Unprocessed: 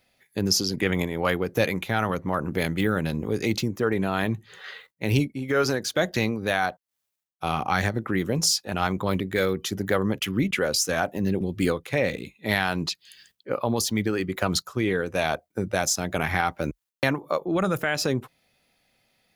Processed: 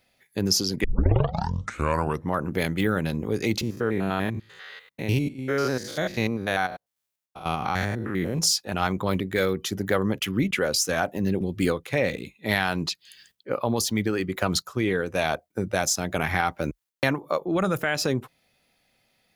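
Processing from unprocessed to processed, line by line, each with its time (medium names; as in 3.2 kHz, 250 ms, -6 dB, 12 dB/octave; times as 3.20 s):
0.84 s: tape start 1.50 s
3.61–8.39 s: spectrogram pixelated in time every 100 ms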